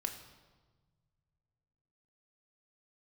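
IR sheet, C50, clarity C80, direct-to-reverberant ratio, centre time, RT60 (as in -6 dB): 9.0 dB, 10.5 dB, 3.5 dB, 21 ms, 1.4 s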